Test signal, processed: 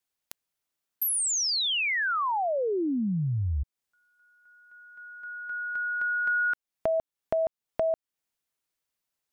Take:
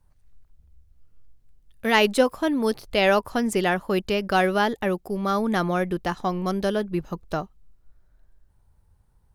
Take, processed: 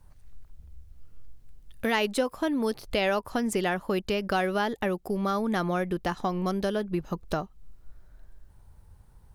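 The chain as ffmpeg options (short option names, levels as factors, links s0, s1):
-af "acompressor=threshold=0.0126:ratio=2.5,volume=2.37"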